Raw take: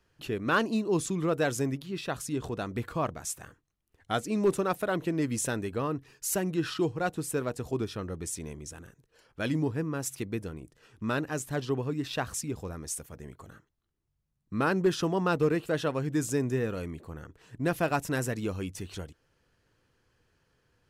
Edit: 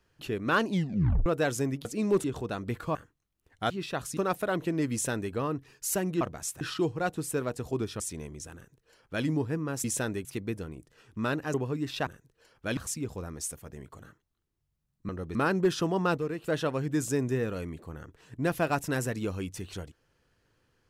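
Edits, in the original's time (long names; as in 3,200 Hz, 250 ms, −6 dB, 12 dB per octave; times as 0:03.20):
0:00.67: tape stop 0.59 s
0:01.85–0:02.32: swap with 0:04.18–0:04.57
0:03.03–0:03.43: move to 0:06.61
0:05.32–0:05.73: duplicate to 0:10.10
0:08.00–0:08.26: move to 0:14.56
0:08.81–0:09.51: duplicate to 0:12.24
0:11.39–0:11.71: remove
0:15.39–0:15.65: clip gain −7 dB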